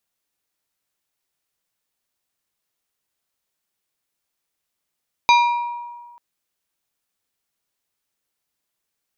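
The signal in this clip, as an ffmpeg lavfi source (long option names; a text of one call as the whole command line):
ffmpeg -f lavfi -i "aevalsrc='0.335*pow(10,-3*t/1.54)*sin(2*PI*956*t)+0.188*pow(10,-3*t/0.811)*sin(2*PI*2390*t)+0.106*pow(10,-3*t/0.584)*sin(2*PI*3824*t)+0.0596*pow(10,-3*t/0.499)*sin(2*PI*4780*t)+0.0335*pow(10,-3*t/0.415)*sin(2*PI*6214*t)':duration=0.89:sample_rate=44100" out.wav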